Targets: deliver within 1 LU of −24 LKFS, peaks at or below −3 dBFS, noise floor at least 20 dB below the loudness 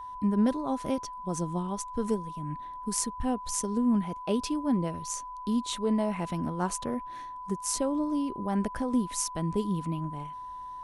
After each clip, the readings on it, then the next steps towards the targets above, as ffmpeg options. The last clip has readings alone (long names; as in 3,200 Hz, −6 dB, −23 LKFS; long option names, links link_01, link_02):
interfering tone 1,000 Hz; level of the tone −38 dBFS; integrated loudness −30.5 LKFS; sample peak −10.5 dBFS; target loudness −24.0 LKFS
→ -af "bandreject=frequency=1000:width=30"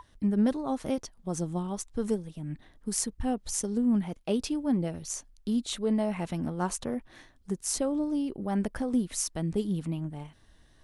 interfering tone none found; integrated loudness −31.0 LKFS; sample peak −10.5 dBFS; target loudness −24.0 LKFS
→ -af "volume=7dB"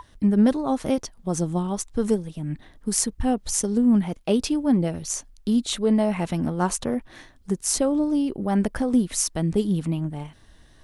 integrated loudness −24.0 LKFS; sample peak −3.5 dBFS; background noise floor −53 dBFS